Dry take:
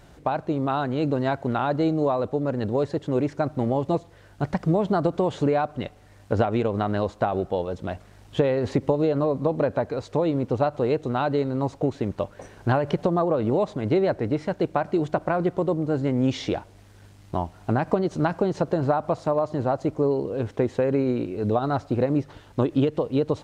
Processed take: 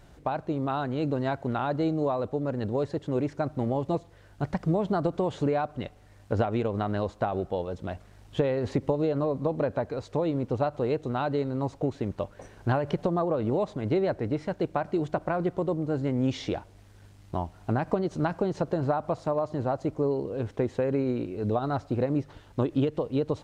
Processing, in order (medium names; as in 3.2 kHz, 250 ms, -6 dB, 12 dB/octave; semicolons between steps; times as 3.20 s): bass shelf 67 Hz +6 dB; trim -4.5 dB